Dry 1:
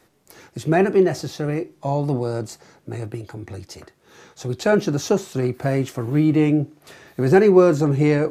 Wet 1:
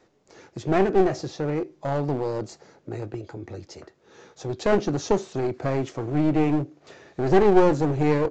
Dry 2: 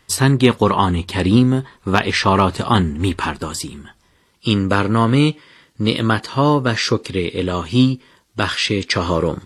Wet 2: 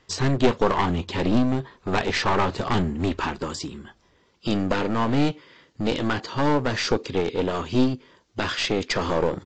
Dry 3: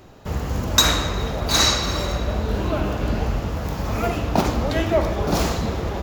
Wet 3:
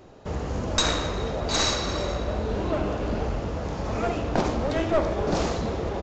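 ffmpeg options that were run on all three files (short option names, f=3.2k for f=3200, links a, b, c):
-af "equalizer=f=470:t=o:w=1.7:g=6,aresample=16000,aeval=exprs='clip(val(0),-1,0.119)':c=same,aresample=44100,volume=-5.5dB"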